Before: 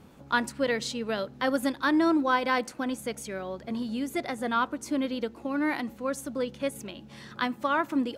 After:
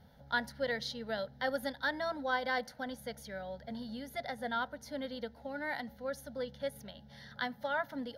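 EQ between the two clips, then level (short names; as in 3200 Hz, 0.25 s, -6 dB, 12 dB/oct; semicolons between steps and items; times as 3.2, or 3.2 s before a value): bell 64 Hz +3.5 dB 0.73 oct; fixed phaser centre 1700 Hz, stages 8; -4.0 dB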